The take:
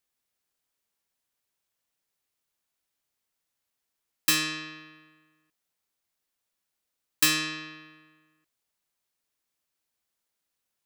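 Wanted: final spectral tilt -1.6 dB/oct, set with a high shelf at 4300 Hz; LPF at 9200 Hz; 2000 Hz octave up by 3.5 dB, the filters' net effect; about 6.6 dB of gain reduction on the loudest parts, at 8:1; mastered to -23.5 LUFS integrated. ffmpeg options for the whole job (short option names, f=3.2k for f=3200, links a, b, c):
-af "lowpass=9.2k,equalizer=f=2k:t=o:g=3,highshelf=f=4.3k:g=6,acompressor=threshold=-23dB:ratio=8,volume=5.5dB"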